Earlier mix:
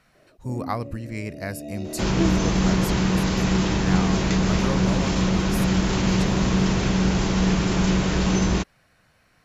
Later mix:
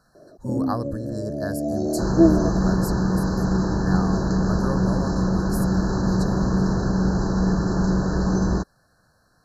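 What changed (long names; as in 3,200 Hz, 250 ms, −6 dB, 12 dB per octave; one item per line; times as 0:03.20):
first sound +10.5 dB
second sound: add high-shelf EQ 2,600 Hz −9.5 dB
master: add linear-phase brick-wall band-stop 1,800–3,900 Hz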